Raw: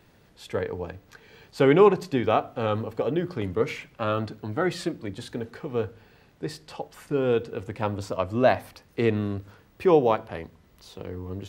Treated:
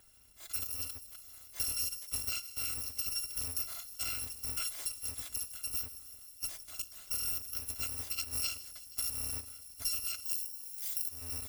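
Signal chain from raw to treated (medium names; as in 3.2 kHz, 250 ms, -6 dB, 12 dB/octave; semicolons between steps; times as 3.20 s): bit-reversed sample order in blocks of 256 samples; 10.25–11.09 s: tilt EQ +4.5 dB/octave; compression 10:1, threshold -28 dBFS, peak gain reduction 17 dB; feedback echo behind a high-pass 159 ms, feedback 81%, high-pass 4.5 kHz, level -15 dB; trim -4.5 dB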